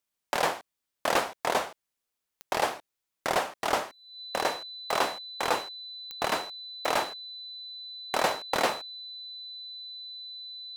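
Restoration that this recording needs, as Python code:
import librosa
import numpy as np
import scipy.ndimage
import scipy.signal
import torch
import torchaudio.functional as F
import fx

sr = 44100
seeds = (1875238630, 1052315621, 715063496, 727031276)

y = fx.fix_declick_ar(x, sr, threshold=10.0)
y = fx.notch(y, sr, hz=4000.0, q=30.0)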